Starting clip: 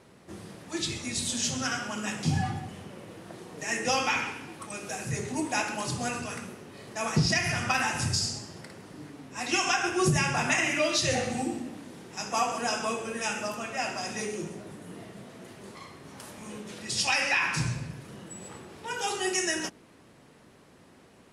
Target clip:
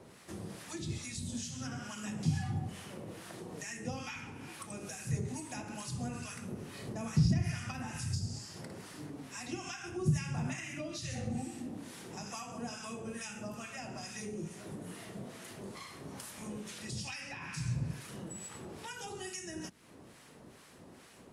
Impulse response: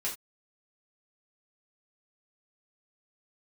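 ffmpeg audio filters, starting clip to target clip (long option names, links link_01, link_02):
-filter_complex "[0:a]asettb=1/sr,asplit=3[link_01][link_02][link_03];[link_01]atrim=end=6.514[link_04];[link_02]atrim=start=6.51:end=7.42,asetpts=PTS-STARTPTS,afade=type=in:duration=0.004:curve=qsin,afade=type=out:start_time=0.906:duration=0.004:curve=qsin,lowshelf=frequency=410:gain=7.5[link_05];[link_03]atrim=start=7.416[link_06];[link_04][link_05]acrossfade=duration=0.004:curve1=hsin:curve2=qsin[link_07];[link_07][link_06]acrossfade=duration=0.004:curve1=qsin:curve2=hsin,acrossover=split=980[link_08][link_09];[link_08]aeval=exprs='val(0)*(1-0.7/2+0.7/2*cos(2*PI*2.3*n/s))':channel_layout=same[link_10];[link_09]aeval=exprs='val(0)*(1-0.7/2-0.7/2*cos(2*PI*2.3*n/s))':channel_layout=same[link_11];[link_10][link_11]amix=inputs=2:normalize=0,highshelf=frequency=5800:gain=6.5,acrossover=split=210[link_12][link_13];[link_13]acompressor=threshold=-47dB:ratio=5[link_14];[link_12][link_14]amix=inputs=2:normalize=0,volume=3dB"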